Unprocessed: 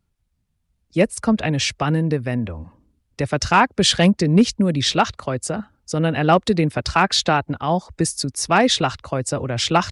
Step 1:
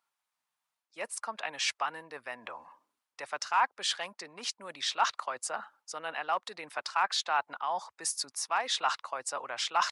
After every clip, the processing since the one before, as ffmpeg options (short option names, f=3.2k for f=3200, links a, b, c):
-af "areverse,acompressor=threshold=-26dB:ratio=6,areverse,highpass=f=970:t=q:w=2.2,volume=-2.5dB"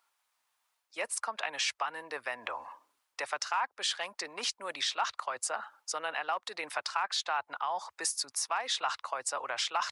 -filter_complex "[0:a]acrossover=split=170[a][b];[b]acompressor=threshold=-40dB:ratio=3[c];[a][c]amix=inputs=2:normalize=0,equalizer=f=170:t=o:w=1.3:g=-13,volume=8dB"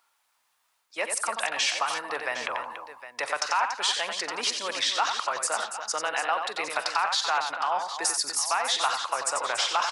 -af "aecho=1:1:45|90|170|285|760:0.119|0.473|0.106|0.316|0.224,volume=5.5dB"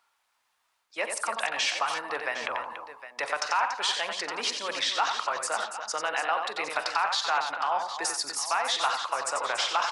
-af "highshelf=f=7.1k:g=-8.5,bandreject=f=62:t=h:w=4,bandreject=f=124:t=h:w=4,bandreject=f=186:t=h:w=4,bandreject=f=248:t=h:w=4,bandreject=f=310:t=h:w=4,bandreject=f=372:t=h:w=4,bandreject=f=434:t=h:w=4,bandreject=f=496:t=h:w=4,bandreject=f=558:t=h:w=4,bandreject=f=620:t=h:w=4,bandreject=f=682:t=h:w=4,bandreject=f=744:t=h:w=4,bandreject=f=806:t=h:w=4,bandreject=f=868:t=h:w=4,bandreject=f=930:t=h:w=4,bandreject=f=992:t=h:w=4,bandreject=f=1.054k:t=h:w=4,bandreject=f=1.116k:t=h:w=4,bandreject=f=1.178k:t=h:w=4,bandreject=f=1.24k:t=h:w=4,bandreject=f=1.302k:t=h:w=4"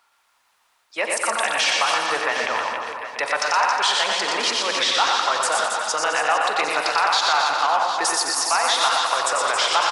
-filter_complex "[0:a]asplit=2[a][b];[b]alimiter=limit=-21.5dB:level=0:latency=1,volume=-3dB[c];[a][c]amix=inputs=2:normalize=0,aecho=1:1:120|270|457.5|691.9|984.8:0.631|0.398|0.251|0.158|0.1,volume=3dB"